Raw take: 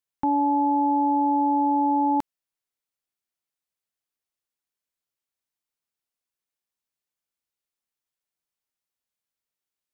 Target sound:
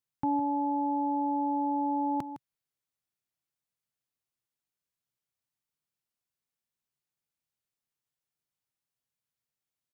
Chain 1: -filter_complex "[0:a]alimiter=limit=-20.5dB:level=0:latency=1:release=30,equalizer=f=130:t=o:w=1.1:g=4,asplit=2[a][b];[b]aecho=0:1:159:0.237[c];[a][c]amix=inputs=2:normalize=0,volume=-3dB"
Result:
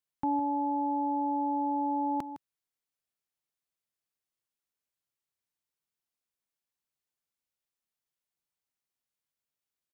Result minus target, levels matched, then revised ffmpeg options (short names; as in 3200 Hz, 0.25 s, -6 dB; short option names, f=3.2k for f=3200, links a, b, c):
125 Hz band -5.0 dB
-filter_complex "[0:a]alimiter=limit=-20.5dB:level=0:latency=1:release=30,equalizer=f=130:t=o:w=1.1:g=11,asplit=2[a][b];[b]aecho=0:1:159:0.237[c];[a][c]amix=inputs=2:normalize=0,volume=-3dB"